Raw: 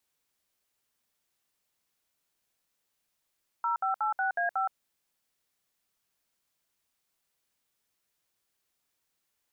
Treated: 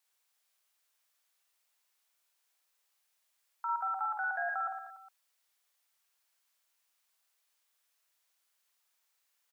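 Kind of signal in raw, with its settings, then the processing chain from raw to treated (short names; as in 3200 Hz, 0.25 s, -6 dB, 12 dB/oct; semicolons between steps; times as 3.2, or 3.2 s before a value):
DTMF "0586A5", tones 0.12 s, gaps 63 ms, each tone -28.5 dBFS
HPF 710 Hz 12 dB/oct; limiter -28.5 dBFS; on a send: reverse bouncing-ball echo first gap 50 ms, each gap 1.25×, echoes 5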